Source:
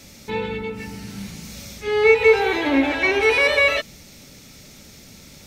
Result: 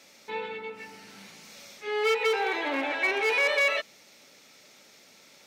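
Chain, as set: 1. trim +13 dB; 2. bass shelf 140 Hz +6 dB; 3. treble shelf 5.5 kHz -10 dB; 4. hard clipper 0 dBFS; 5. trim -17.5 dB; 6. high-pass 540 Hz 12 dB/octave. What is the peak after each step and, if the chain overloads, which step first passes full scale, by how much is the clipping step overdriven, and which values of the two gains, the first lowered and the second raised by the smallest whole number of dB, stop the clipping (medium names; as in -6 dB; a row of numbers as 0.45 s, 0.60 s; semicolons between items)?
+9.5 dBFS, +10.0 dBFS, +9.5 dBFS, 0.0 dBFS, -17.5 dBFS, -13.5 dBFS; step 1, 9.5 dB; step 1 +3 dB, step 5 -7.5 dB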